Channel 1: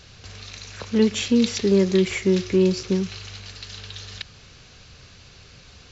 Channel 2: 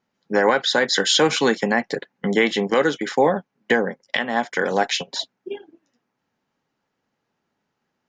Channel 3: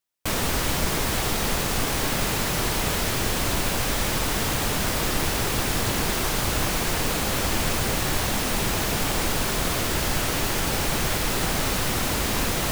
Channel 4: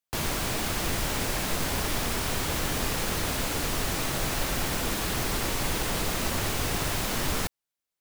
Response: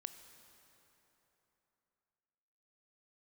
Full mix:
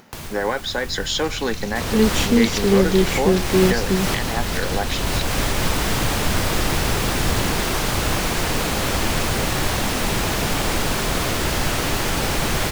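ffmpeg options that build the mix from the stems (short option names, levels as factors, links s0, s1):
-filter_complex "[0:a]adelay=1000,volume=1.19[s0];[1:a]volume=0.531,asplit=2[s1][s2];[2:a]highshelf=f=8500:g=-6,adelay=1500,volume=1.12,asplit=2[s3][s4];[s4]volume=0.631[s5];[3:a]asubboost=boost=6:cutoff=240,volume=0.355[s6];[s2]apad=whole_len=627086[s7];[s3][s7]sidechaincompress=threshold=0.0251:ratio=8:attack=16:release=275[s8];[4:a]atrim=start_sample=2205[s9];[s5][s9]afir=irnorm=-1:irlink=0[s10];[s0][s1][s8][s6][s10]amix=inputs=5:normalize=0,acompressor=mode=upward:threshold=0.0447:ratio=2.5"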